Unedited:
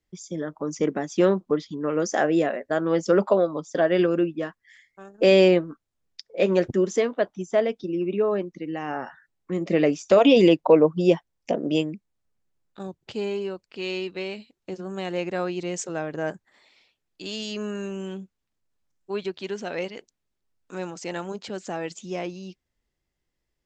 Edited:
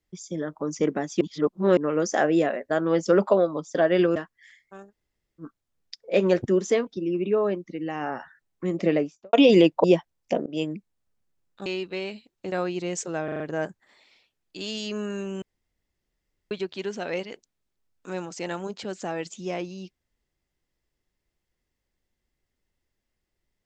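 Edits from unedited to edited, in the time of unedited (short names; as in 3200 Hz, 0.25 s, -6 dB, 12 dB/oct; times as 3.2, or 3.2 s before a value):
1.21–1.77 reverse
4.16–4.42 cut
5.16–5.67 room tone, crossfade 0.06 s
7.13–7.74 cut
9.65–10.2 studio fade out
10.71–11.02 cut
11.64–11.9 fade in, from -22.5 dB
12.84–13.9 cut
14.76–15.33 cut
16.05 stutter 0.04 s, 5 plays
18.07–19.16 room tone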